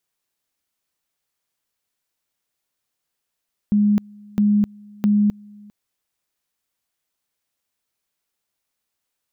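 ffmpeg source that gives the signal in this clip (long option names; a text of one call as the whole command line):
ffmpeg -f lavfi -i "aevalsrc='pow(10,(-13-27*gte(mod(t,0.66),0.26))/20)*sin(2*PI*207*t)':duration=1.98:sample_rate=44100" out.wav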